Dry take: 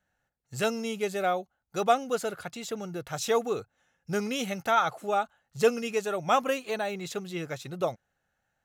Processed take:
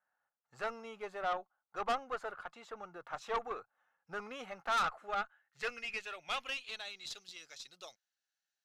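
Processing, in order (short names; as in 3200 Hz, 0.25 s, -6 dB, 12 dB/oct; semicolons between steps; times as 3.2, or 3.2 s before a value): band-pass sweep 1100 Hz -> 4800 Hz, 4.61–7.29; tube stage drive 31 dB, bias 0.5; gain +3 dB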